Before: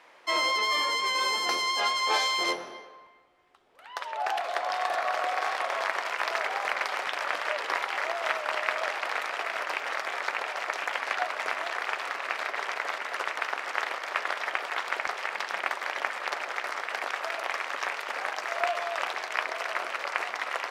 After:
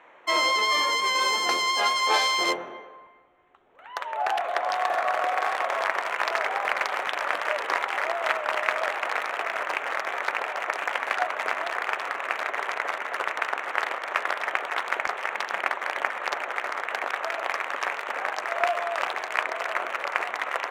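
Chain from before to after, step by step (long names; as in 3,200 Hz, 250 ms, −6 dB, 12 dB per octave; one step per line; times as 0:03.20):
adaptive Wiener filter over 9 samples
level +4 dB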